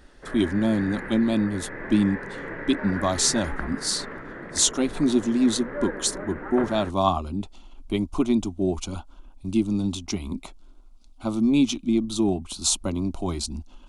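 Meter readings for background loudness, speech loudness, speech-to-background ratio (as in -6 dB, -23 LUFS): -35.5 LUFS, -25.0 LUFS, 10.5 dB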